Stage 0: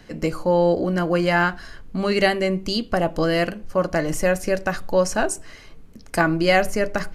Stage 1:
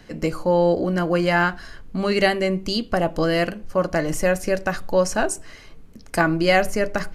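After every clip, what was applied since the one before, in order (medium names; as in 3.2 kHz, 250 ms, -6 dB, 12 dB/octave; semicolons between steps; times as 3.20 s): no audible change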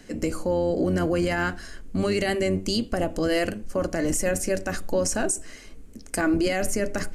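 octave divider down 1 oct, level -3 dB; ten-band graphic EQ 125 Hz -11 dB, 250 Hz +5 dB, 1 kHz -6 dB, 4 kHz -4 dB, 8 kHz +9 dB; peak limiter -15 dBFS, peak gain reduction 10.5 dB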